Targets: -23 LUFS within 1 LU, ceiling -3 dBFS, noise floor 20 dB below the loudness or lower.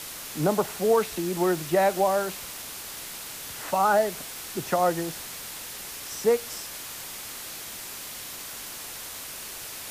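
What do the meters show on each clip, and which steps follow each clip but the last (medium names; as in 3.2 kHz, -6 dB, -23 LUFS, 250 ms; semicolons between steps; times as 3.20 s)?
noise floor -39 dBFS; noise floor target -48 dBFS; loudness -28.0 LUFS; peak level -11.5 dBFS; loudness target -23.0 LUFS
-> noise reduction 9 dB, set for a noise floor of -39 dBFS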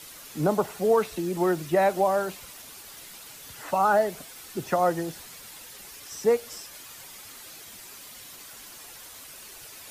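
noise floor -45 dBFS; noise floor target -46 dBFS
-> noise reduction 6 dB, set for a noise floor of -45 dBFS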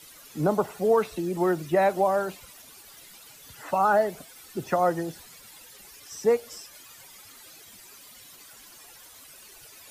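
noise floor -50 dBFS; loudness -25.5 LUFS; peak level -12.0 dBFS; loudness target -23.0 LUFS
-> trim +2.5 dB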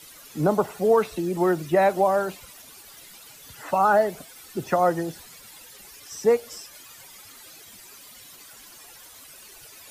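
loudness -23.0 LUFS; peak level -9.5 dBFS; noise floor -47 dBFS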